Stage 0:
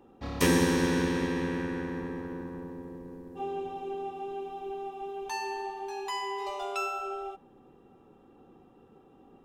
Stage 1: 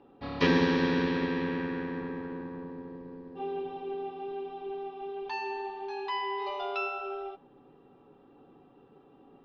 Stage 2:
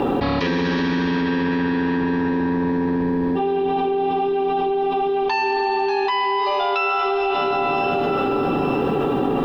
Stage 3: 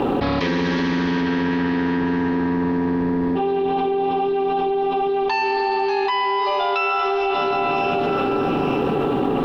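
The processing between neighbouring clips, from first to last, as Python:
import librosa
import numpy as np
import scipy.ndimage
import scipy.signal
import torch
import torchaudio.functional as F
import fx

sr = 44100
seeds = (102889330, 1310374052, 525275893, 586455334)

y1 = scipy.signal.sosfilt(scipy.signal.butter(8, 4800.0, 'lowpass', fs=sr, output='sos'), x)
y1 = fx.low_shelf(y1, sr, hz=100.0, db=-8.0)
y1 = y1 + 0.33 * np.pad(y1, (int(7.1 * sr / 1000.0), 0))[:len(y1)]
y2 = fx.rev_plate(y1, sr, seeds[0], rt60_s=3.5, hf_ratio=0.95, predelay_ms=115, drr_db=7.5)
y2 = fx.env_flatten(y2, sr, amount_pct=100)
y2 = F.gain(torch.from_numpy(y2), 1.0).numpy()
y3 = fx.doppler_dist(y2, sr, depth_ms=0.14)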